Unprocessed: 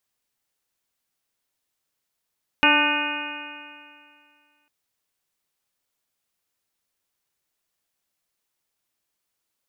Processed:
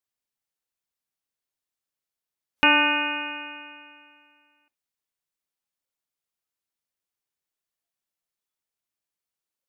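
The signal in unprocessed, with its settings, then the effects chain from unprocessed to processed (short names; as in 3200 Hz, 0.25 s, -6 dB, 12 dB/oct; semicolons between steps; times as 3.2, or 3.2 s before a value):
stretched partials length 2.05 s, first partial 292 Hz, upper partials -5/2/-2.5/2.5/-3/-5.5/6/1.5 dB, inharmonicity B 0.0021, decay 2.25 s, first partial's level -22.5 dB
spectral noise reduction 10 dB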